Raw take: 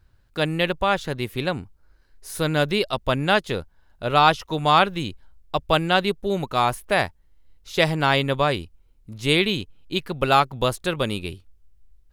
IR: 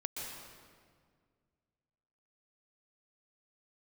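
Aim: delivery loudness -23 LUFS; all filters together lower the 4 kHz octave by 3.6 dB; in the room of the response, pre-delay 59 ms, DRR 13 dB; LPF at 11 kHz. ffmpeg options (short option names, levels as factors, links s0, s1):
-filter_complex "[0:a]lowpass=11000,equalizer=f=4000:t=o:g=-4.5,asplit=2[s0][s1];[1:a]atrim=start_sample=2205,adelay=59[s2];[s1][s2]afir=irnorm=-1:irlink=0,volume=0.2[s3];[s0][s3]amix=inputs=2:normalize=0"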